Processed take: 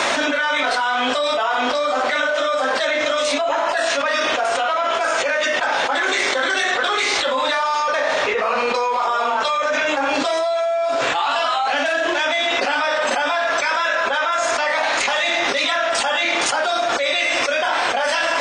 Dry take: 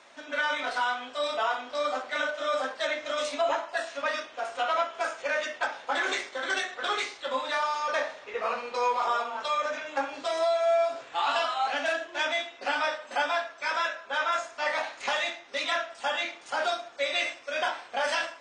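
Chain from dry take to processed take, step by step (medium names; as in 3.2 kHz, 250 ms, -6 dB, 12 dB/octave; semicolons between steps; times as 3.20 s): level flattener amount 100%; trim +2.5 dB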